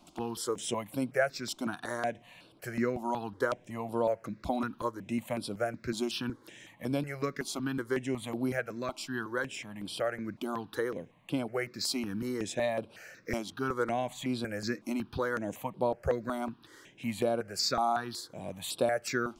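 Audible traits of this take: notches that jump at a steady rate 5.4 Hz 470–6500 Hz

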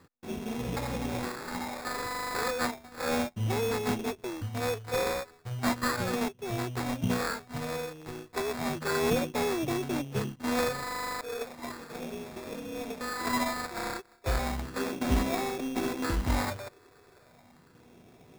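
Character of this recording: a buzz of ramps at a fixed pitch in blocks of 16 samples; phasing stages 6, 0.34 Hz, lowest notch 190–2000 Hz; aliases and images of a low sample rate 3000 Hz, jitter 0%

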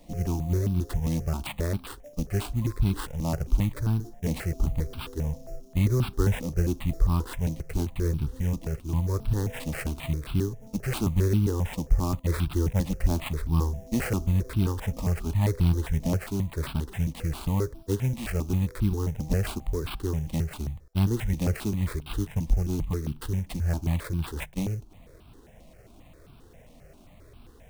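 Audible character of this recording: aliases and images of a low sample rate 6200 Hz, jitter 20%; notches that jump at a steady rate 7.5 Hz 400–1900 Hz

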